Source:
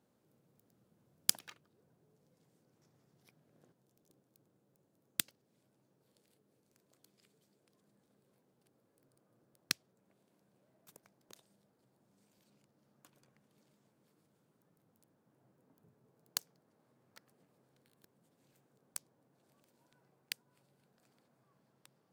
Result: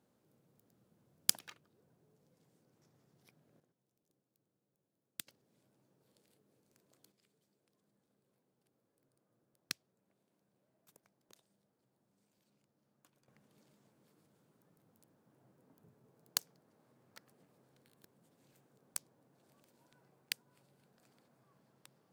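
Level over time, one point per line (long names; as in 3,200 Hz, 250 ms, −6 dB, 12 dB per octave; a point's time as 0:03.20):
0 dB
from 0:03.60 −11 dB
from 0:05.27 +0.5 dB
from 0:07.12 −6 dB
from 0:13.28 +2.5 dB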